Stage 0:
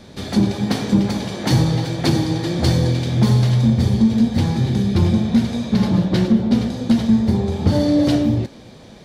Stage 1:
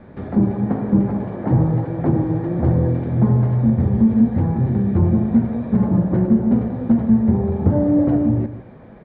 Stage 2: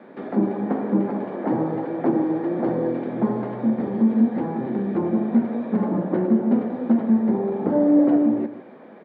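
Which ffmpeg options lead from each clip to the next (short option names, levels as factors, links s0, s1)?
-filter_complex "[0:a]lowpass=f=1900:w=0.5412,lowpass=f=1900:w=1.3066,acrossover=split=1100[s0][s1];[s1]acompressor=threshold=0.00355:ratio=6[s2];[s0][s2]amix=inputs=2:normalize=0,asplit=2[s3][s4];[s4]adelay=157.4,volume=0.224,highshelf=f=4000:g=-3.54[s5];[s3][s5]amix=inputs=2:normalize=0"
-af "highpass=f=240:w=0.5412,highpass=f=240:w=1.3066,volume=1.12"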